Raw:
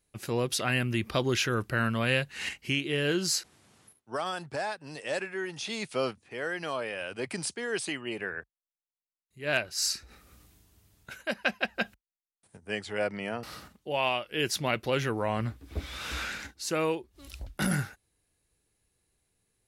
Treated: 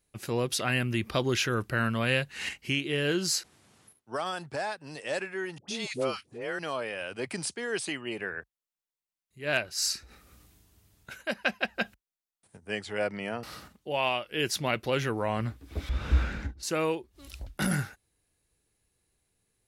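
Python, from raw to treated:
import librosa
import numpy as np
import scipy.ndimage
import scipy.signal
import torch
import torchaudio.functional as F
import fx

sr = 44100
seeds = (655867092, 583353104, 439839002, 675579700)

y = fx.dispersion(x, sr, late='highs', ms=103.0, hz=780.0, at=(5.58, 6.59))
y = fx.tilt_eq(y, sr, slope=-4.5, at=(15.89, 16.63))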